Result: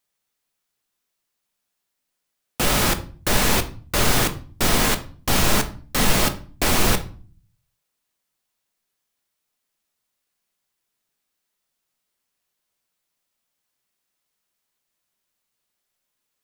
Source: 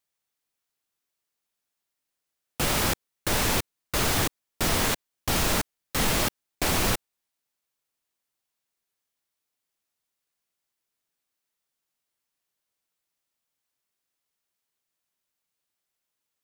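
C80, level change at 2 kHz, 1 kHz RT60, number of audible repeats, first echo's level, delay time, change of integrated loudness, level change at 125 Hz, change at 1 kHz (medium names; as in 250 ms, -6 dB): 19.5 dB, +5.0 dB, 0.40 s, no echo, no echo, no echo, +5.0 dB, +5.5 dB, +5.5 dB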